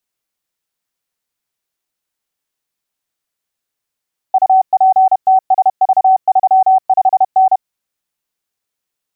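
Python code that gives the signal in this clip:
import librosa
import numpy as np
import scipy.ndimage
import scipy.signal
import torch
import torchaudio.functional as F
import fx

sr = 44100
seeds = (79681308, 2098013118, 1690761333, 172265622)

y = fx.morse(sr, text='UPTSV35N', wpm=31, hz=758.0, level_db=-5.5)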